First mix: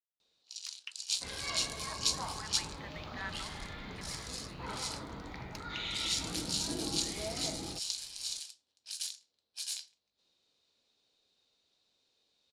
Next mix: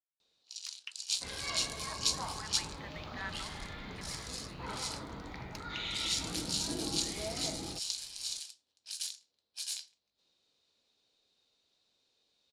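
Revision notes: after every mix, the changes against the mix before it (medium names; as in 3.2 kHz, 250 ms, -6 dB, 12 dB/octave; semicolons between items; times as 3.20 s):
no change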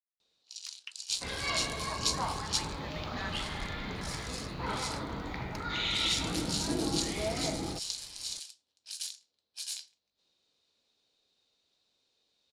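second sound +6.5 dB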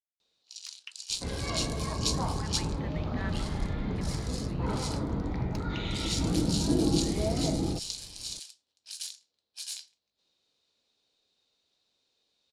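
second sound: add tilt shelf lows +9.5 dB, about 800 Hz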